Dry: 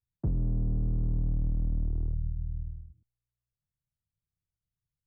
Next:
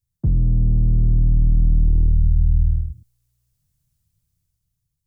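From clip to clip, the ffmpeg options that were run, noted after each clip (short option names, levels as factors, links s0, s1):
-af "dynaudnorm=f=290:g=7:m=3.16,alimiter=limit=0.0841:level=0:latency=1:release=12,bass=f=250:g=12,treble=f=4000:g=11"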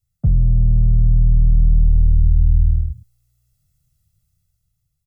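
-af "aecho=1:1:1.5:0.98,acompressor=threshold=0.2:ratio=1.5"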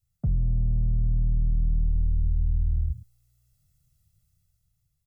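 -af "alimiter=limit=0.15:level=0:latency=1:release=30,volume=0.794"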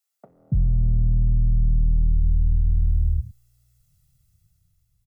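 -filter_complex "[0:a]acrossover=split=400[s0][s1];[s0]adelay=280[s2];[s2][s1]amix=inputs=2:normalize=0,volume=1.68"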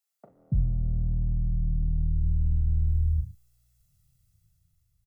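-filter_complex "[0:a]asplit=2[s0][s1];[s1]adelay=38,volume=0.398[s2];[s0][s2]amix=inputs=2:normalize=0,volume=0.631"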